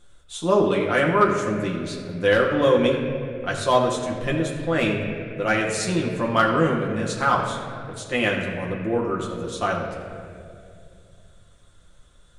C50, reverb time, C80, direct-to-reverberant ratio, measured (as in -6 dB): 4.0 dB, 2.5 s, 5.0 dB, -2.5 dB